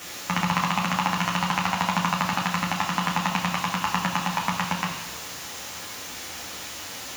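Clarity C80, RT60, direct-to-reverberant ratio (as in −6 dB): 8.0 dB, 1.1 s, −2.0 dB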